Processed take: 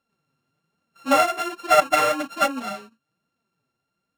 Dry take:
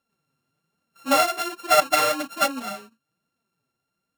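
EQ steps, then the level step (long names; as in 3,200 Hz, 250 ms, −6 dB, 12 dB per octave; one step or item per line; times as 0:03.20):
high-shelf EQ 8,800 Hz −11 dB
dynamic equaliser 4,400 Hz, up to −6 dB, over −40 dBFS, Q 1.9
+2.0 dB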